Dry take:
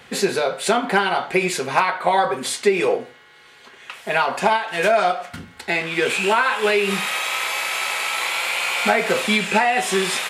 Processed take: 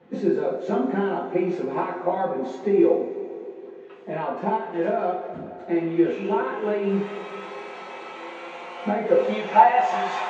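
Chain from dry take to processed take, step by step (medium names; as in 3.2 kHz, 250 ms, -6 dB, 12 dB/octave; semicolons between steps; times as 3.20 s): knee-point frequency compression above 3.8 kHz 1.5:1; band-pass sweep 330 Hz -> 810 Hz, 8.99–9.52 s; two-slope reverb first 0.31 s, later 3.1 s, from -18 dB, DRR -6 dB; trim -1 dB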